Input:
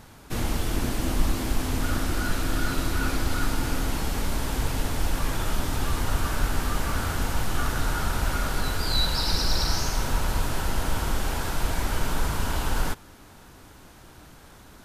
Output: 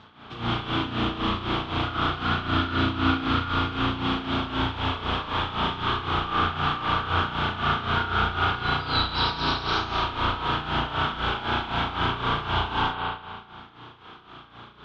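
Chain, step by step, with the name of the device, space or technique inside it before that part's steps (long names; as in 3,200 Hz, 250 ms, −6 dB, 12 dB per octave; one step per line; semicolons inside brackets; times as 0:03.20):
combo amplifier with spring reverb and tremolo (spring reverb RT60 1.5 s, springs 34 ms, chirp 40 ms, DRR −7 dB; amplitude tremolo 3.9 Hz, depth 73%; loudspeaker in its box 110–4,000 Hz, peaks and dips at 180 Hz −6 dB, 290 Hz −4 dB, 550 Hz −9 dB, 1,200 Hz +7 dB, 1,900 Hz −5 dB, 3,300 Hz +10 dB)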